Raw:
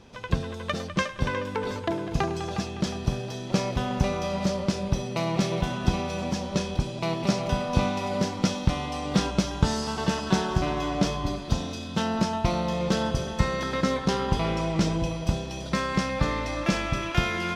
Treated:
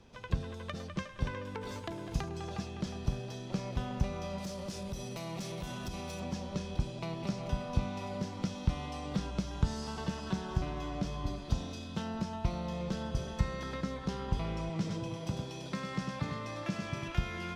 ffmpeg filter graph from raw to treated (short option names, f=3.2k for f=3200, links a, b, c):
-filter_complex "[0:a]asettb=1/sr,asplit=3[a][b][c];[a]atrim=end=1.614[d];[b]atrim=start=1.61:end=2.29,asetpts=PTS-STARTPTS,afade=t=in:d=0.004:c=qsin,afade=t=out:st=0.676:d=0.004:c=qsin,highshelf=f=5.1k:g=9,asplit=2[e][f];[f]adelay=17,volume=-13.5dB[g];[e][g]amix=inputs=2:normalize=0,atrim=end_sample=29988,aeval=exprs='sgn(val(0))*max(abs(val(0))-0.00158,0)':c=same[h];[c]atrim=start=2.286[i];[d][h]acrossfade=d=0.004:c1=hsin:c2=qsin[j];[j][i]acrossfade=d=0.004:c1=qsin:c2=hsin,asettb=1/sr,asplit=3[k][l][m];[k]atrim=end=4.384[n];[l]atrim=start=4.38:end=6.2,asetpts=PTS-STARTPTS,afade=t=in:d=0.004:c=qsin,afade=t=out:st=1.816:d=0.004:c=qsin,aemphasis=mode=production:type=50fm,acompressor=threshold=-28dB:ratio=3:attack=3.2:release=140:knee=1:detection=peak,volume=24.5dB,asoftclip=hard,volume=-24.5dB[o];[m]atrim=start=6.196[p];[n][o]acrossfade=d=0.004:c1=hsin:c2=qsin[q];[q][p]acrossfade=d=0.004:c1=qsin:c2=hsin,asettb=1/sr,asplit=3[r][s][t];[r]atrim=end=14.694[u];[s]atrim=start=14.69:end=17.08,asetpts=PTS-STARTPTS,afade=t=in:d=0.004:c=qsin,afade=t=out:st=2.386:d=0.004:c=qsin,highpass=f=100:w=0.5412,highpass=f=100:w=1.3066,aecho=1:1:100:0.531,atrim=end_sample=105399[v];[t]atrim=start=17.076[w];[u][v]acrossfade=d=0.004:c1=hsin:c2=qsin[x];[x][w]acrossfade=d=0.004:c1=qsin:c2=hsin,lowshelf=f=89:g=5.5,acrossover=split=190[y][z];[z]acompressor=threshold=-29dB:ratio=6[aa];[y][aa]amix=inputs=2:normalize=0,volume=-8.5dB"